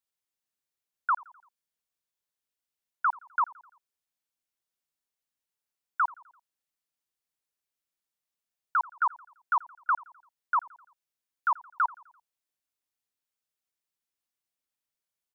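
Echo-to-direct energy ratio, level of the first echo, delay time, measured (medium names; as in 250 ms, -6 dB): -21.0 dB, -22.5 dB, 85 ms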